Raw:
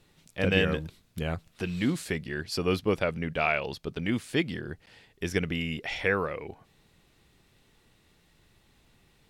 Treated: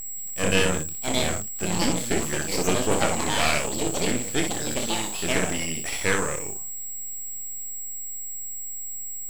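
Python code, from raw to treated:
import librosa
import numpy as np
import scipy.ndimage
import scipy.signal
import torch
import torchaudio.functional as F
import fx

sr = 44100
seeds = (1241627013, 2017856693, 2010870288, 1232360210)

y = fx.echo_pitch(x, sr, ms=751, semitones=5, count=2, db_per_echo=-3.0)
y = y + 10.0 ** (-34.0 / 20.0) * np.sin(2.0 * np.pi * 7700.0 * np.arange(len(y)) / sr)
y = fx.room_early_taps(y, sr, ms=(27, 61), db=(-7.0, -6.5))
y = np.maximum(y, 0.0)
y = F.gain(torch.from_numpy(y), 5.0).numpy()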